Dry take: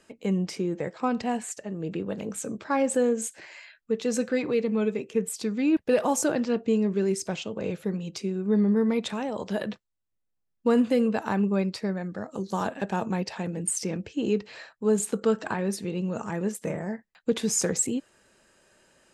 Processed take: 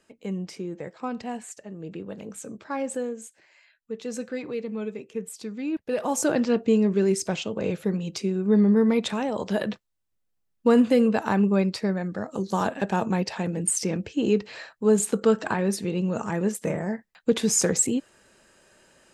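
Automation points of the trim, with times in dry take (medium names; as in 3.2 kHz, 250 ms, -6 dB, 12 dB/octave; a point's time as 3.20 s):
2.93 s -5 dB
3.43 s -14 dB
4.00 s -6 dB
5.87 s -6 dB
6.36 s +3.5 dB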